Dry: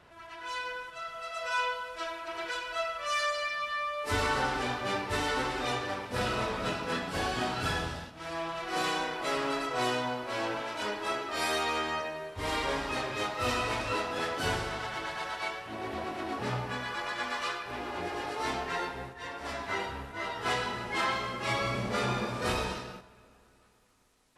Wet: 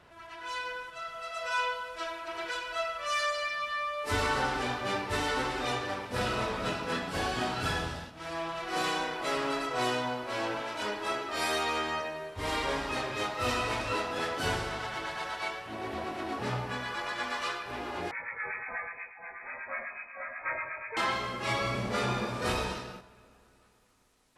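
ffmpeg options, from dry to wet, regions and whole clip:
ffmpeg -i in.wav -filter_complex "[0:a]asettb=1/sr,asplit=3[link_01][link_02][link_03];[link_01]atrim=end=18.114[link_04];[link_02]atrim=start=18.11:end=20.97,asetpts=PTS-STARTPTS,afade=type=in:duration=0.004:curve=qsin,afade=type=out:start_time=2.856:duration=0.004:curve=qsin,lowpass=frequency=2200:width_type=q:width=0.5098,lowpass=frequency=2200:width_type=q:width=0.6013,lowpass=frequency=2200:width_type=q:width=0.9,lowpass=frequency=2200:width_type=q:width=2.563,afreqshift=-2600,acrossover=split=930[link_05][link_06];[link_05]aeval=exprs='val(0)*(1-0.7/2+0.7/2*cos(2*PI*8.2*n/s))':channel_layout=same[link_07];[link_06]aeval=exprs='val(0)*(1-0.7/2-0.7/2*cos(2*PI*8.2*n/s))':channel_layout=same[link_08];[link_07][link_08]amix=inputs=2:normalize=0[link_09];[link_03]atrim=start=20.966[link_10];[link_04][link_09]acrossfade=duration=0.004:curve1=hsin:curve2=qsin[link_11];[link_11][link_10]acrossfade=duration=0.004:curve1=qsin:curve2=hsin" out.wav

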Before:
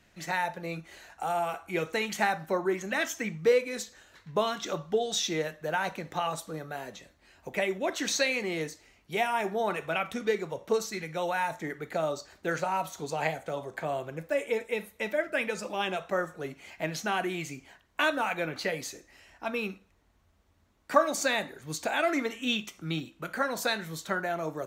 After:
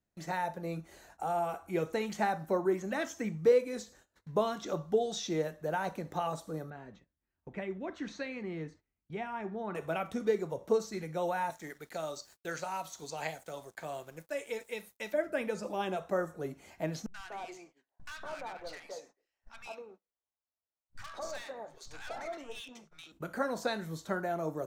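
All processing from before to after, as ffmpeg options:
ffmpeg -i in.wav -filter_complex "[0:a]asettb=1/sr,asplit=3[link_01][link_02][link_03];[link_01]atrim=end=6.704[link_04];[link_02]atrim=start=6.7:end=9.75,asetpts=PTS-STARTPTS,afade=type=in:duration=0.004:curve=qsin,afade=type=out:start_time=3.046:duration=0.004:curve=qsin,lowpass=2200,equalizer=frequency=590:width_type=o:width=1.6:gain=-10.5[link_05];[link_03]atrim=start=9.746[link_06];[link_04][link_05]acrossfade=duration=0.004:curve1=hsin:curve2=qsin[link_07];[link_07][link_06]acrossfade=duration=0.004:curve1=qsin:curve2=hsin,asettb=1/sr,asplit=3[link_08][link_09][link_10];[link_08]atrim=end=11.504[link_11];[link_09]atrim=start=11.5:end=15.14,asetpts=PTS-STARTPTS,afade=type=in:duration=0.004:curve=qsin,afade=type=out:start_time=3.636:duration=0.004:curve=qsin,tiltshelf=frequency=1500:gain=-9,aeval=exprs='sgn(val(0))*max(abs(val(0))-0.00158,0)':channel_layout=same[link_12];[link_10]atrim=start=15.136[link_13];[link_11][link_12]acrossfade=duration=0.004:curve1=hsin:curve2=qsin[link_14];[link_14][link_13]acrossfade=duration=0.004:curve1=qsin:curve2=hsin,asettb=1/sr,asplit=3[link_15][link_16][link_17];[link_15]atrim=end=17.064[link_18];[link_16]atrim=start=17.06:end=23.12,asetpts=PTS-STARTPTS,afade=type=in:duration=0.004:curve=qsin,afade=type=out:start_time=6.056:duration=0.004:curve=qsin,acrossover=split=540 6500:gain=0.0708 1 0.112[link_19][link_20][link_21];[link_19][link_20][link_21]amix=inputs=3:normalize=0,aeval=exprs='(tanh(35.5*val(0)+0.4)-tanh(0.4))/35.5':channel_layout=same,acrossover=split=170|1200[link_22][link_23][link_24];[link_24]adelay=80[link_25];[link_23]adelay=240[link_26];[link_22][link_26][link_25]amix=inputs=3:normalize=0,atrim=end_sample=267246[link_27];[link_17]atrim=start=23.116[link_28];[link_18][link_27]acrossfade=duration=0.004:curve1=hsin:curve2=qsin[link_29];[link_29][link_28]acrossfade=duration=0.004:curve1=qsin:curve2=hsin,acrossover=split=6200[link_30][link_31];[link_31]acompressor=threshold=-55dB:ratio=4:attack=1:release=60[link_32];[link_30][link_32]amix=inputs=2:normalize=0,agate=range=-21dB:threshold=-53dB:ratio=16:detection=peak,equalizer=frequency=2600:width_type=o:width=2.1:gain=-11" out.wav

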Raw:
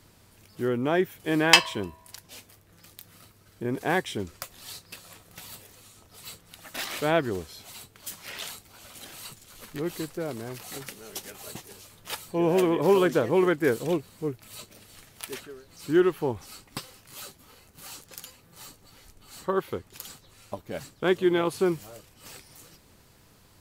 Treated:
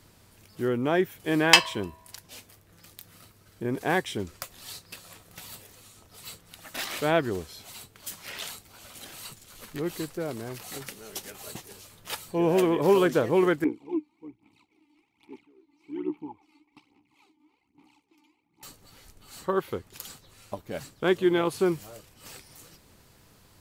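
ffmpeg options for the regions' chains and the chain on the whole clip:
ffmpeg -i in.wav -filter_complex "[0:a]asettb=1/sr,asplit=3[link_01][link_02][link_03];[link_01]atrim=end=13.644[link_04];[link_02]atrim=start=13.64:end=18.63,asetpts=PTS-STARTPTS,afade=type=in:duration=0.004:curve=qsin,afade=type=out:start_time=4.986:duration=0.004:curve=qsin,tremolo=f=66:d=0.667,aphaser=in_gain=1:out_gain=1:delay=3.4:decay=0.7:speed=1.2:type=sinusoidal,asplit=3[link_05][link_06][link_07];[link_05]bandpass=frequency=300:width_type=q:width=8,volume=0dB[link_08];[link_06]bandpass=frequency=870:width_type=q:width=8,volume=-6dB[link_09];[link_07]bandpass=frequency=2240:width_type=q:width=8,volume=-9dB[link_10];[link_08][link_09][link_10]amix=inputs=3:normalize=0[link_11];[link_03]atrim=start=18.626[link_12];[link_04][link_11]acrossfade=duration=0.004:curve1=hsin:curve2=qsin[link_13];[link_13][link_12]acrossfade=duration=0.004:curve1=qsin:curve2=hsin" out.wav

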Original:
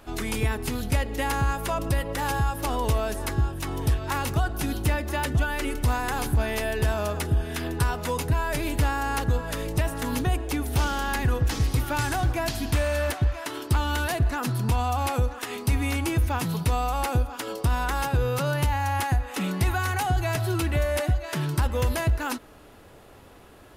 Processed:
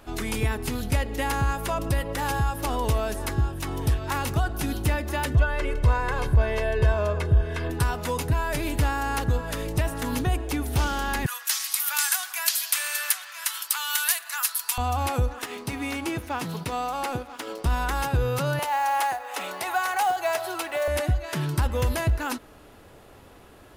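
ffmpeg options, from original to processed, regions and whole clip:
ffmpeg -i in.wav -filter_complex "[0:a]asettb=1/sr,asplit=3[link_01][link_02][link_03];[link_01]atrim=end=5.354[link_04];[link_02]atrim=start=5.35:end=7.7,asetpts=PTS-STARTPTS,afade=type=in:duration=0.004:curve=qsin,afade=type=out:start_time=2.346:duration=0.004:curve=qsin,aemphasis=mode=reproduction:type=75fm,aecho=1:1:1.9:0.63,atrim=end_sample=103635[link_05];[link_03]atrim=start=7.696[link_06];[link_04][link_05]acrossfade=duration=0.004:curve1=hsin:curve2=qsin[link_07];[link_07][link_06]acrossfade=duration=0.004:curve1=qsin:curve2=hsin,asettb=1/sr,asplit=3[link_08][link_09][link_10];[link_08]atrim=end=11.264[link_11];[link_09]atrim=start=11.26:end=14.78,asetpts=PTS-STARTPTS,afade=type=in:duration=0.004:curve=qsin,afade=type=out:start_time=3.516:duration=0.004:curve=qsin,highpass=frequency=1100:width=0.5412,highpass=frequency=1100:width=1.3066,aemphasis=mode=production:type=75kf[link_12];[link_10]atrim=start=14.776[link_13];[link_11][link_12]acrossfade=duration=0.004:curve1=hsin:curve2=qsin[link_14];[link_14][link_13]acrossfade=duration=0.004:curve1=qsin:curve2=hsin,asettb=1/sr,asplit=3[link_15][link_16][link_17];[link_15]atrim=end=15.464[link_18];[link_16]atrim=start=15.46:end=17.66,asetpts=PTS-STARTPTS,afade=type=in:duration=0.004:curve=qsin,afade=type=out:start_time=2.196:duration=0.004:curve=qsin,highpass=180,highshelf=frequency=9000:gain=-7.5,aeval=exprs='sgn(val(0))*max(abs(val(0))-0.00473,0)':channel_layout=same[link_19];[link_17]atrim=start=17.656[link_20];[link_18][link_19]acrossfade=duration=0.004:curve1=hsin:curve2=qsin[link_21];[link_21][link_20]acrossfade=duration=0.004:curve1=qsin:curve2=hsin,asettb=1/sr,asplit=3[link_22][link_23][link_24];[link_22]atrim=end=18.594[link_25];[link_23]atrim=start=18.59:end=20.88,asetpts=PTS-STARTPTS,afade=type=in:duration=0.004:curve=qsin,afade=type=out:start_time=2.286:duration=0.004:curve=qsin,highpass=frequency=660:width_type=q:width=1.8,acrusher=bits=6:mode=log:mix=0:aa=0.000001[link_26];[link_24]atrim=start=20.876[link_27];[link_25][link_26]acrossfade=duration=0.004:curve1=hsin:curve2=qsin[link_28];[link_28][link_27]acrossfade=duration=0.004:curve1=qsin:curve2=hsin" out.wav

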